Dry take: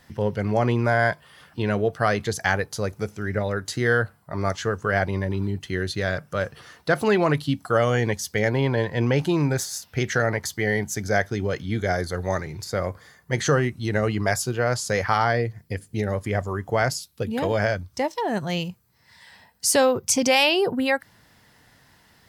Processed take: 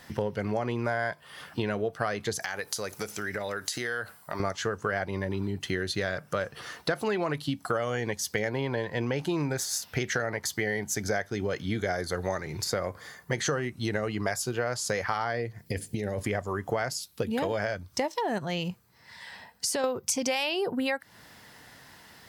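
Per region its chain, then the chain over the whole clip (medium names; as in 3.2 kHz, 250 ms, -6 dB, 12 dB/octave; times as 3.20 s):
2.42–4.40 s: tilt EQ +2.5 dB/octave + compression 5:1, threshold -33 dBFS
15.66–16.23 s: peaking EQ 1.2 kHz -10.5 dB 0.71 oct + compressor with a negative ratio -30 dBFS
18.38–19.84 s: treble shelf 6 kHz -6.5 dB + compression 2.5:1, threshold -29 dBFS
whole clip: bass shelf 140 Hz -9 dB; compression 6:1, threshold -32 dBFS; trim +5.5 dB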